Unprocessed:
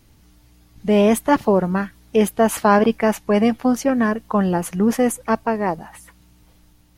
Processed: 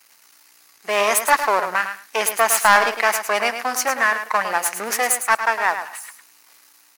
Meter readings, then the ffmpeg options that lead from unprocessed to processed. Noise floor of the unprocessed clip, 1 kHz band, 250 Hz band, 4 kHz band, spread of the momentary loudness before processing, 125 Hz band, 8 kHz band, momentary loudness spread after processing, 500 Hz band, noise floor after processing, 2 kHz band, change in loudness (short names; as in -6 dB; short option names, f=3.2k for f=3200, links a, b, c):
-54 dBFS, +3.5 dB, -21.0 dB, +7.5 dB, 7 LU, under -20 dB, +9.5 dB, 8 LU, -5.5 dB, -54 dBFS, +9.5 dB, 0.0 dB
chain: -filter_complex "[0:a]aeval=exprs='if(lt(val(0),0),0.251*val(0),val(0))':c=same,highpass=1.3k,equalizer=f=3.3k:t=o:w=0.45:g=-8,asplit=2[a][b];[b]aeval=exprs='0.794*sin(PI/2*4.47*val(0)/0.794)':c=same,volume=-11dB[c];[a][c]amix=inputs=2:normalize=0,aecho=1:1:107|214:0.355|0.0568,volume=3.5dB"